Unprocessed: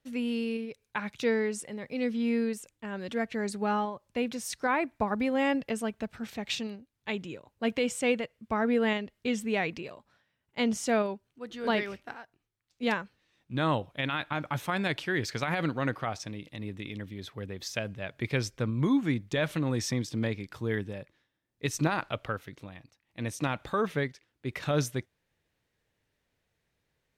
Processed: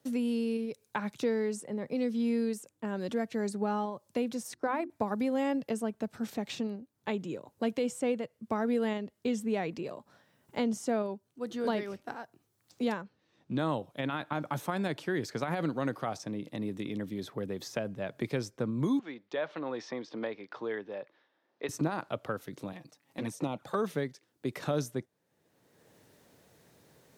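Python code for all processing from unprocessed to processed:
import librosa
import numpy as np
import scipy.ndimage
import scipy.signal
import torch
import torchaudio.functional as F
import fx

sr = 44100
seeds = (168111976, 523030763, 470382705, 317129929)

y = fx.chain(x, sr, fx.transient(attack_db=-1, sustain_db=-11),
    fx.hum_notches(base_hz=50, count=7), at=(4.43, 4.9))
y = fx.chain(y, sr, fx.lowpass(hz=6000.0, slope=12),
    fx.high_shelf(hz=4700.0, db=-6.0), at=(13.02, 13.59))
y = fx.chain(y, sr, fx.bandpass_edges(low_hz=580.0, high_hz=6600.0),
    fx.air_absorb(metres=250.0), at=(18.99, 21.69))
y = fx.chain(y, sr, fx.low_shelf(hz=77.0, db=-12.0),
    fx.env_flanger(rest_ms=7.8, full_db=-27.0), at=(22.72, 23.75))
y = scipy.signal.sosfilt(scipy.signal.butter(2, 150.0, 'highpass', fs=sr, output='sos'), y)
y = fx.peak_eq(y, sr, hz=2400.0, db=-10.5, octaves=1.8)
y = fx.band_squash(y, sr, depth_pct=70)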